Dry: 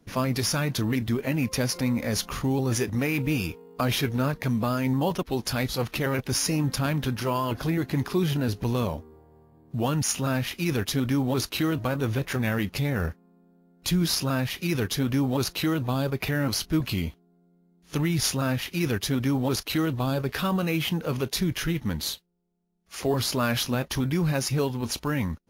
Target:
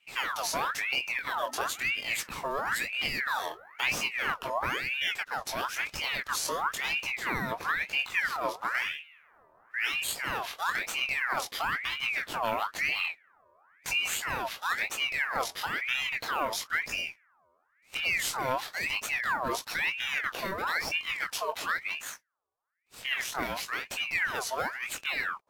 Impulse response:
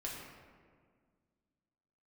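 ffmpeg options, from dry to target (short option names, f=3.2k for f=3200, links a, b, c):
-filter_complex "[0:a]flanger=delay=17:depth=7:speed=0.41,asettb=1/sr,asplit=3[a][b][c];[a]atrim=end=21.994[d];[b]atrim=start=21.99:end=23.85,asetpts=PTS-STARTPTS,afade=t=in:d=0.004:c=qsin,afade=t=out:st=1.856:d=0.004:c=qsin,aeval=exprs='0.15*(cos(1*acos(clip(val(0)/0.15,-1,1)))-cos(1*PI/2))+0.0133*(cos(3*acos(clip(val(0)/0.15,-1,1)))-cos(3*PI/2))+0.00266*(cos(7*acos(clip(val(0)/0.15,-1,1)))-cos(7*PI/2))':c=same[e];[c]atrim=start=23.846[f];[d][e]acrossfade=d=0.004:c1=hsin:c2=qsin[g];[g][f]acrossfade=d=0.004:c1=qsin:c2=hsin,aeval=exprs='val(0)*sin(2*PI*1700*n/s+1700*0.55/1*sin(2*PI*1*n/s))':c=same"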